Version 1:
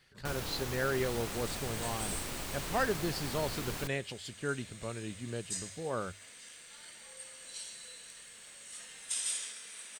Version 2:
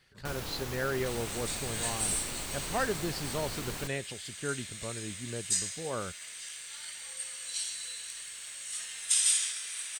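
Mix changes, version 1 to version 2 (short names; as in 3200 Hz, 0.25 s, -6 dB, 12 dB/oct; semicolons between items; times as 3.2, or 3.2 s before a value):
speech: remove notches 50/100 Hz; second sound: add tilt shelf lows -9.5 dB, about 730 Hz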